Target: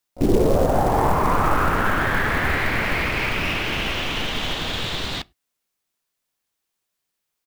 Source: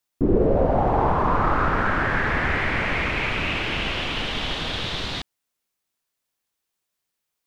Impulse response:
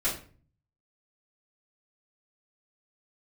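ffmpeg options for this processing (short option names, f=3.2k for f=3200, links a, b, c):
-filter_complex "[0:a]acrusher=bits=5:mode=log:mix=0:aa=0.000001,asplit=3[a][b][c];[b]asetrate=33038,aresample=44100,atempo=1.33484,volume=-18dB[d];[c]asetrate=88200,aresample=44100,atempo=0.5,volume=-18dB[e];[a][d][e]amix=inputs=3:normalize=0,asplit=2[f][g];[1:a]atrim=start_sample=2205,afade=t=out:st=0.16:d=0.01,atrim=end_sample=7497[h];[g][h]afir=irnorm=-1:irlink=0,volume=-31dB[i];[f][i]amix=inputs=2:normalize=0,volume=1dB"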